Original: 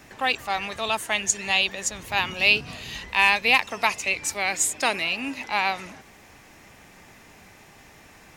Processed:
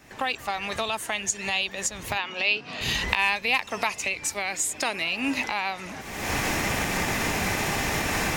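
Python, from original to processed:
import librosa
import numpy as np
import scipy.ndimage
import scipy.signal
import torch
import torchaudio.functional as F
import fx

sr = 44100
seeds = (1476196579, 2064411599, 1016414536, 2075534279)

y = fx.recorder_agc(x, sr, target_db=-12.0, rise_db_per_s=47.0, max_gain_db=30)
y = fx.bandpass_edges(y, sr, low_hz=fx.line((2.17, 340.0), (2.8, 210.0)), high_hz=4700.0, at=(2.17, 2.8), fade=0.02)
y = y * librosa.db_to_amplitude(-5.0)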